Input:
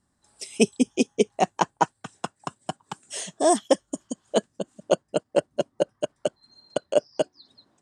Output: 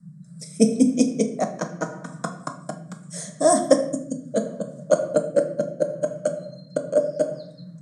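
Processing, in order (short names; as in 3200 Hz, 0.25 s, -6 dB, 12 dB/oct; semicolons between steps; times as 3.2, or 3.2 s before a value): shoebox room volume 210 m³, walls mixed, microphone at 0.52 m; rotary speaker horn 0.75 Hz; band noise 120–180 Hz -41 dBFS; fixed phaser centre 570 Hz, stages 8; gain +5 dB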